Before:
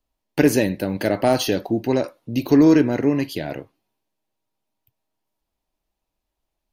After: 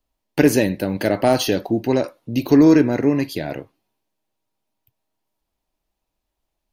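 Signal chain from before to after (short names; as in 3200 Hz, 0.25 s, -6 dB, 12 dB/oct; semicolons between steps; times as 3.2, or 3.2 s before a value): 2.55–3.53 notch 3000 Hz, Q 7.8; gain +1.5 dB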